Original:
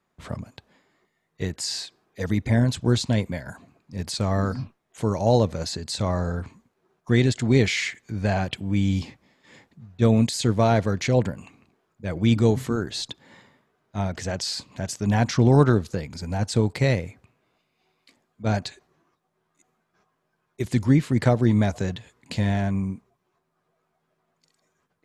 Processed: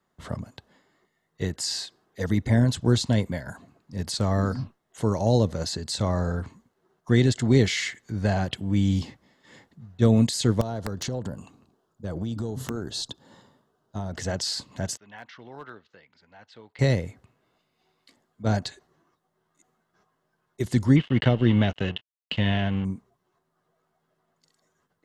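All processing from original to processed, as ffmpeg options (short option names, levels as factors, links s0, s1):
-filter_complex "[0:a]asettb=1/sr,asplit=3[s0][s1][s2];[s0]atrim=end=10.614[s3];[s1]atrim=start=10.61:end=14.13,asetpts=PTS-STARTPTS,afade=t=in:d=0.004:c=qsin,afade=t=out:st=3.516:d=0.004:c=qsin,equalizer=f=2100:w=2.4:g=-13,acompressor=threshold=0.0562:ratio=16:attack=3.2:release=140:knee=1:detection=peak,aeval=exprs='(mod(8.91*val(0)+1,2)-1)/8.91':c=same[s4];[s2]atrim=start=14.126[s5];[s3][s4]acrossfade=d=0.004:c1=hsin:c2=qsin[s6];[s6][s5]acrossfade=d=0.004:c1=qsin:c2=hsin,asettb=1/sr,asplit=3[s7][s8][s9];[s7]atrim=end=14.974[s10];[s8]atrim=start=14.97:end=16.79,asetpts=PTS-STARTPTS,afade=t=in:d=0.004:c=qsin,afade=t=out:st=1.816:d=0.004:c=qsin,lowpass=f=2800:w=0.5412,lowpass=f=2800:w=1.3066,aderivative,volume=33.5,asoftclip=hard,volume=0.0299[s11];[s9]atrim=start=16.786[s12];[s10][s11]acrossfade=d=0.004:c1=hsin:c2=qsin[s13];[s13][s12]acrossfade=d=0.004:c1=qsin:c2=hsin,asettb=1/sr,asplit=3[s14][s15][s16];[s14]atrim=end=20.964[s17];[s15]atrim=start=20.96:end=22.85,asetpts=PTS-STARTPTS,afade=t=in:d=0.004:c=qsin,afade=t=out:st=1.886:d=0.004:c=qsin,aeval=exprs='sgn(val(0))*max(abs(val(0))-0.0126,0)':c=same,lowpass=f=2900:t=q:w=8.6[s18];[s16]atrim=start=22.846[s19];[s17][s18]acrossfade=d=0.004:c1=hsin:c2=qsin[s20];[s20][s19]acrossfade=d=0.004:c1=qsin:c2=hsin,bandreject=f=2400:w=6.4,acrossover=split=470|3000[s21][s22][s23];[s22]acompressor=threshold=0.0447:ratio=6[s24];[s21][s24][s23]amix=inputs=3:normalize=0"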